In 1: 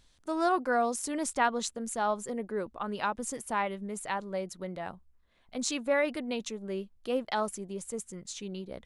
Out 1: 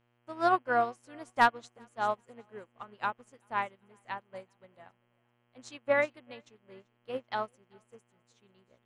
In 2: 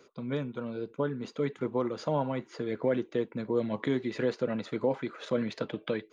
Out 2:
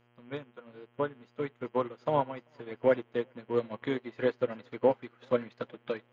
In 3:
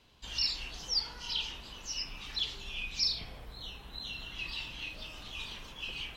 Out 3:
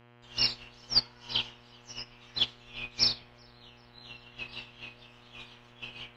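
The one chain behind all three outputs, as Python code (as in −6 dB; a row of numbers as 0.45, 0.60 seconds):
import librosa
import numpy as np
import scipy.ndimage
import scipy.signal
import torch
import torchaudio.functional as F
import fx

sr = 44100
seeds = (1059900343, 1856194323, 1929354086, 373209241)

y = fx.lowpass(x, sr, hz=2600.0, slope=6)
y = fx.low_shelf(y, sr, hz=450.0, db=-11.0)
y = np.clip(y, -10.0 ** (-20.0 / 20.0), 10.0 ** (-20.0 / 20.0))
y = fx.dmg_buzz(y, sr, base_hz=120.0, harmonics=27, level_db=-51.0, tilt_db=-4, odd_only=False)
y = fx.echo_feedback(y, sr, ms=388, feedback_pct=47, wet_db=-17)
y = fx.upward_expand(y, sr, threshold_db=-47.0, expansion=2.5)
y = y * 10.0 ** (-12 / 20.0) / np.max(np.abs(y))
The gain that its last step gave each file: +8.0, +10.0, +14.0 decibels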